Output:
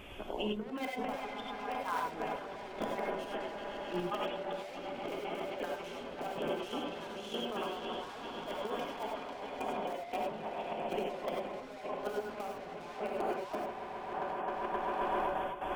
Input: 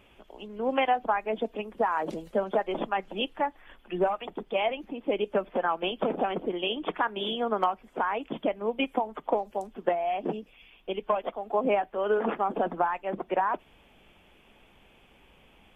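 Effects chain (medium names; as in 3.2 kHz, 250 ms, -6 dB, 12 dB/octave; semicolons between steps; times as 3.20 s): reverb removal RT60 0.56 s; echo with a slow build-up 132 ms, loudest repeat 5, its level -14 dB; in parallel at -11 dB: integer overflow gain 22.5 dB; on the sum: trance gate "xxxxxx.x..xx." 172 bpm -12 dB; overload inside the chain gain 31.5 dB; compressor with a negative ratio -40 dBFS, ratio -0.5; gated-style reverb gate 120 ms rising, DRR 0.5 dB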